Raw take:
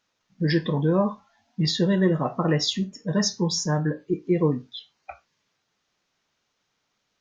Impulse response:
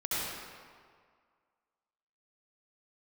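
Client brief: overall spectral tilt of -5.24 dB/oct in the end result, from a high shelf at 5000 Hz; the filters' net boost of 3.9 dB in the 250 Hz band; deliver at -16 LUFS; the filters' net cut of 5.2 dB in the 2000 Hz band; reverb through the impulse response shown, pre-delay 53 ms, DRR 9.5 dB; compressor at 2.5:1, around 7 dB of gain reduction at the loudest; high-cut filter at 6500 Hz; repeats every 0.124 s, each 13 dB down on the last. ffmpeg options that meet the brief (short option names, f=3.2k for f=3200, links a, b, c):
-filter_complex "[0:a]lowpass=6.5k,equalizer=f=250:t=o:g=6.5,equalizer=f=2k:t=o:g=-7,highshelf=f=5k:g=6.5,acompressor=threshold=-24dB:ratio=2.5,aecho=1:1:124|248|372:0.224|0.0493|0.0108,asplit=2[a][b];[1:a]atrim=start_sample=2205,adelay=53[c];[b][c]afir=irnorm=-1:irlink=0,volume=-17dB[d];[a][d]amix=inputs=2:normalize=0,volume=10.5dB"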